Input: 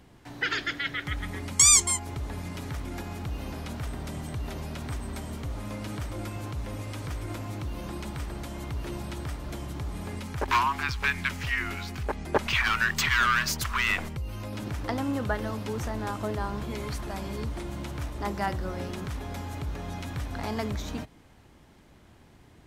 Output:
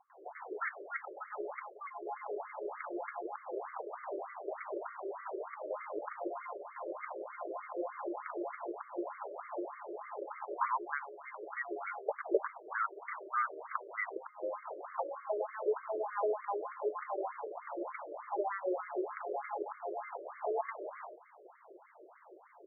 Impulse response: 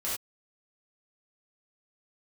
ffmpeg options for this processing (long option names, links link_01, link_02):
-filter_complex "[0:a]aresample=16000,aeval=exprs='clip(val(0),-1,0.0794)':channel_layout=same,aresample=44100,acompressor=threshold=-33dB:ratio=16,equalizer=frequency=1700:width=2.1:gain=-9.5,acrossover=split=770[link_01][link_02];[link_02]adelay=100[link_03];[link_01][link_03]amix=inputs=2:normalize=0,afftfilt=real='re*between(b*sr/1024,440*pow(1600/440,0.5+0.5*sin(2*PI*3.3*pts/sr))/1.41,440*pow(1600/440,0.5+0.5*sin(2*PI*3.3*pts/sr))*1.41)':imag='im*between(b*sr/1024,440*pow(1600/440,0.5+0.5*sin(2*PI*3.3*pts/sr))/1.41,440*pow(1600/440,0.5+0.5*sin(2*PI*3.3*pts/sr))*1.41)':win_size=1024:overlap=0.75,volume=12dB"